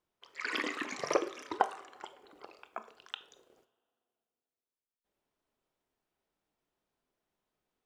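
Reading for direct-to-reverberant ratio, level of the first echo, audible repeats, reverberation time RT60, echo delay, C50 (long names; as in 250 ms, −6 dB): 11.0 dB, no echo audible, no echo audible, 0.45 s, no echo audible, 15.0 dB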